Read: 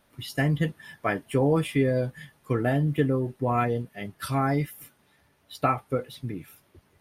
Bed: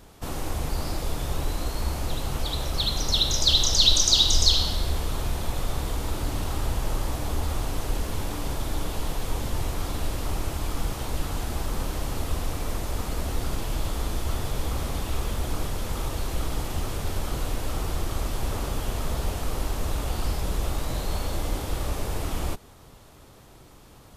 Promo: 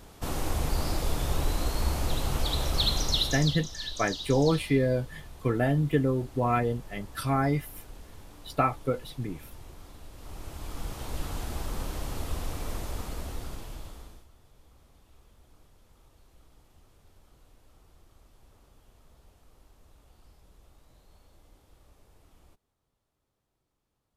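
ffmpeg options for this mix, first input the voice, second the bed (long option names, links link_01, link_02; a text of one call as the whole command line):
ffmpeg -i stem1.wav -i stem2.wav -filter_complex "[0:a]adelay=2950,volume=-1dB[link_01];[1:a]volume=14dB,afade=type=out:start_time=2.89:duration=0.7:silence=0.112202,afade=type=in:start_time=10.12:duration=1.13:silence=0.199526,afade=type=out:start_time=12.81:duration=1.47:silence=0.0530884[link_02];[link_01][link_02]amix=inputs=2:normalize=0" out.wav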